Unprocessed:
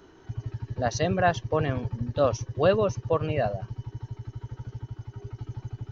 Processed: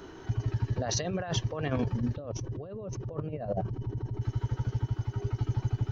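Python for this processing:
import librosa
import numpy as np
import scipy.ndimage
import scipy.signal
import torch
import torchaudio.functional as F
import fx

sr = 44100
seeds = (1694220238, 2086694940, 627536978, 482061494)

y = fx.tilt_shelf(x, sr, db=8.5, hz=840.0, at=(2.16, 4.2), fade=0.02)
y = fx.over_compress(y, sr, threshold_db=-32.0, ratio=-1.0)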